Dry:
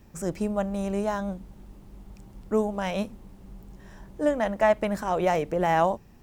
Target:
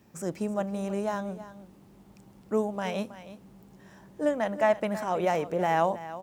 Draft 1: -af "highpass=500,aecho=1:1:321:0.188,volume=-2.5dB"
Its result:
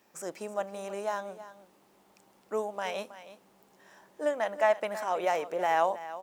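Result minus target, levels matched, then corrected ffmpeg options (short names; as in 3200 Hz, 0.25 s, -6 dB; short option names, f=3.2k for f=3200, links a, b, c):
125 Hz band -14.0 dB
-af "highpass=130,aecho=1:1:321:0.188,volume=-2.5dB"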